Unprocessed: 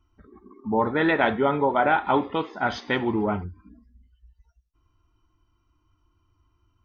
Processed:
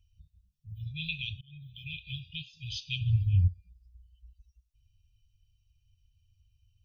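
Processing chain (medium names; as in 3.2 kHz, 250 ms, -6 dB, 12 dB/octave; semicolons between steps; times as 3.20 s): 1.32–1.94 s: slow attack 494 ms; 3.01–3.48 s: tone controls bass +13 dB, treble +3 dB; brick-wall FIR band-stop 160–2400 Hz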